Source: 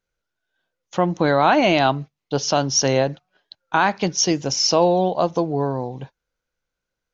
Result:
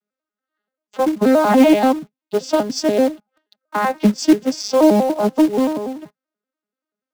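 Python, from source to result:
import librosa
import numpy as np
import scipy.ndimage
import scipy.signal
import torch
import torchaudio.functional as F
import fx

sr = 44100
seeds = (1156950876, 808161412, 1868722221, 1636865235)

p1 = fx.vocoder_arp(x, sr, chord='major triad', root=56, every_ms=96)
p2 = fx.quant_companded(p1, sr, bits=4)
y = p1 + F.gain(torch.from_numpy(p2), -4.0).numpy()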